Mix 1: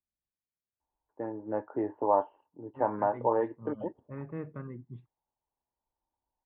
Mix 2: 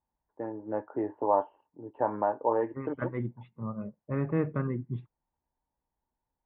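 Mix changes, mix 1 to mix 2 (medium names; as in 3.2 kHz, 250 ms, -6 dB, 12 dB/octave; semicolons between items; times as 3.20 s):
first voice: entry -0.80 s; second voice +10.5 dB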